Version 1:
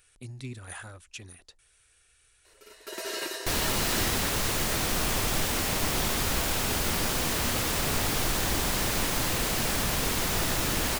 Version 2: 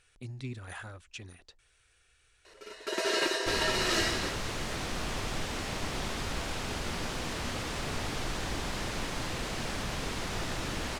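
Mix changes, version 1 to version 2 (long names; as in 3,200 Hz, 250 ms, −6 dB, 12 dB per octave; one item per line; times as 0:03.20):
first sound +6.5 dB
second sound −5.5 dB
master: add high-frequency loss of the air 69 metres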